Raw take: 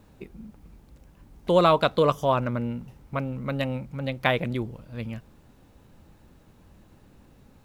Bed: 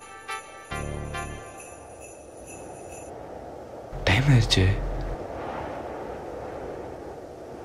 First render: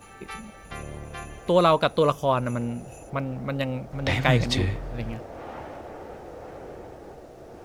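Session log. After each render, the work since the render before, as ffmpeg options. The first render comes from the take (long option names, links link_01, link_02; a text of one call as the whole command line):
ffmpeg -i in.wav -i bed.wav -filter_complex "[1:a]volume=-5dB[link_01];[0:a][link_01]amix=inputs=2:normalize=0" out.wav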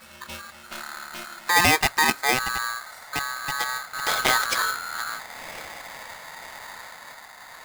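ffmpeg -i in.wav -filter_complex "[0:a]acrossover=split=260[link_01][link_02];[link_01]volume=22dB,asoftclip=hard,volume=-22dB[link_03];[link_03][link_02]amix=inputs=2:normalize=0,aeval=exprs='val(0)*sgn(sin(2*PI*1400*n/s))':channel_layout=same" out.wav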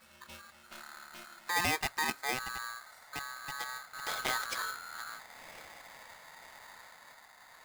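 ffmpeg -i in.wav -af "volume=-12.5dB" out.wav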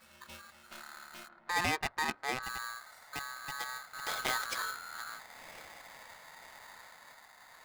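ffmpeg -i in.wav -filter_complex "[0:a]asplit=3[link_01][link_02][link_03];[link_01]afade=type=out:start_time=1.27:duration=0.02[link_04];[link_02]adynamicsmooth=sensitivity=7:basefreq=990,afade=type=in:start_time=1.27:duration=0.02,afade=type=out:start_time=2.42:duration=0.02[link_05];[link_03]afade=type=in:start_time=2.42:duration=0.02[link_06];[link_04][link_05][link_06]amix=inputs=3:normalize=0" out.wav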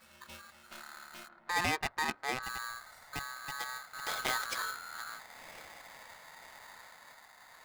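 ffmpeg -i in.wav -filter_complex "[0:a]asettb=1/sr,asplit=3[link_01][link_02][link_03];[link_01]atrim=end=2.684[link_04];[link_02]atrim=start=2.68:end=3.24,asetpts=PTS-STARTPTS,afade=type=in:duration=0.004:curve=qsin,afade=type=out:start_time=0.556:duration=0.004:curve=qsin,lowshelf=frequency=160:gain=10.5[link_05];[link_03]atrim=start=3.236[link_06];[link_04][link_05]acrossfade=duration=0.004:curve1=hsin:curve2=qsin[link_07];[link_07][link_06]acrossfade=duration=0.004:curve1=qsin:curve2=hsin" out.wav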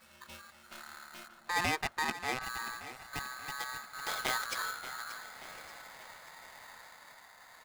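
ffmpeg -i in.wav -af "aecho=1:1:582|1164|1746|2328|2910:0.211|0.106|0.0528|0.0264|0.0132" out.wav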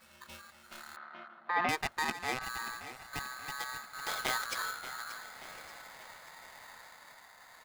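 ffmpeg -i in.wav -filter_complex "[0:a]asettb=1/sr,asplit=3[link_01][link_02][link_03];[link_01]atrim=end=0.964[link_04];[link_02]atrim=start=0.96:end=1.69,asetpts=PTS-STARTPTS,afade=type=in:duration=0.004:curve=qsin,afade=type=out:start_time=0.726:duration=0.004:curve=qsin,highpass=frequency=170:width=0.5412,highpass=frequency=170:width=1.3066,equalizer=frequency=690:width_type=q:width=4:gain=5,equalizer=frequency=1200:width_type=q:width=4:gain=6,equalizer=frequency=2600:width_type=q:width=4:gain=-5,lowpass=frequency=3000:width=0.5412,lowpass=frequency=3000:width=1.3066[link_05];[link_03]atrim=start=1.686[link_06];[link_04][link_05]acrossfade=duration=0.004:curve1=hsin:curve2=qsin[link_07];[link_07][link_06]acrossfade=duration=0.004:curve1=qsin:curve2=hsin" out.wav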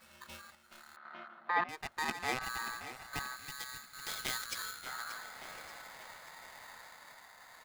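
ffmpeg -i in.wav -filter_complex "[0:a]asettb=1/sr,asplit=3[link_01][link_02][link_03];[link_01]atrim=end=3.364[link_04];[link_02]atrim=start=3.36:end=4.86,asetpts=PTS-STARTPTS,afade=type=in:duration=0.004:curve=qsin,afade=type=out:start_time=1.496:duration=0.004:curve=qsin,equalizer=frequency=810:width=0.57:gain=-11[link_05];[link_03]atrim=start=4.856[link_06];[link_04][link_05]acrossfade=duration=0.004:curve1=hsin:curve2=qsin[link_07];[link_07][link_06]acrossfade=duration=0.004:curve1=qsin:curve2=hsin,asplit=4[link_08][link_09][link_10][link_11];[link_08]atrim=end=0.552[link_12];[link_09]atrim=start=0.548:end=1.052,asetpts=PTS-STARTPTS,volume=-7dB[link_13];[link_10]atrim=start=1.048:end=1.64,asetpts=PTS-STARTPTS,afade=type=out:start_time=0.588:duration=0.004:curve=hsin:silence=0.0794328[link_14];[link_11]atrim=start=1.64,asetpts=PTS-STARTPTS,afade=type=in:duration=0.55:silence=0.0794328[link_15];[link_12][link_13]acrossfade=duration=0.004:curve1=hsin:curve2=hsin[link_16];[link_14][link_15]concat=n=2:v=0:a=1[link_17];[link_16][link_17]acrossfade=duration=0.004:curve1=hsin:curve2=hsin" out.wav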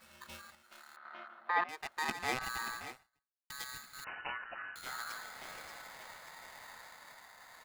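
ffmpeg -i in.wav -filter_complex "[0:a]asettb=1/sr,asplit=3[link_01][link_02][link_03];[link_01]atrim=end=0.624[link_04];[link_02]atrim=start=0.62:end=2.09,asetpts=PTS-STARTPTS,afade=type=in:duration=0.004:curve=qsin,afade=type=out:start_time=1.466:duration=0.004:curve=qsin,bass=frequency=250:gain=-11,treble=frequency=4000:gain=-1[link_05];[link_03]atrim=start=2.086[link_06];[link_04][link_05]acrossfade=duration=0.004:curve1=hsin:curve2=qsin[link_07];[link_07][link_06]acrossfade=duration=0.004:curve1=qsin:curve2=hsin,asettb=1/sr,asplit=3[link_08][link_09][link_10];[link_08]atrim=end=4.044[link_11];[link_09]atrim=start=4.04:end=4.76,asetpts=PTS-STARTPTS,afade=type=in:duration=0.004:curve=qsin,afade=type=out:start_time=0.716:duration=0.004:curve=qsin,lowpass=frequency=2600:width_type=q:width=0.5098,lowpass=frequency=2600:width_type=q:width=0.6013,lowpass=frequency=2600:width_type=q:width=0.9,lowpass=frequency=2600:width_type=q:width=2.563,afreqshift=-3000[link_12];[link_10]atrim=start=4.756[link_13];[link_11][link_12]acrossfade=duration=0.004:curve1=hsin:curve2=qsin[link_14];[link_14][link_13]acrossfade=duration=0.004:curve1=qsin:curve2=hsin,asplit=2[link_15][link_16];[link_15]atrim=end=3.5,asetpts=PTS-STARTPTS,afade=type=out:start_time=2.9:duration=0.6:curve=exp[link_17];[link_16]atrim=start=3.5,asetpts=PTS-STARTPTS,afade=type=in:duration=0.004:curve=hsin[link_18];[link_17][link_18]concat=n=2:v=0:a=1" out.wav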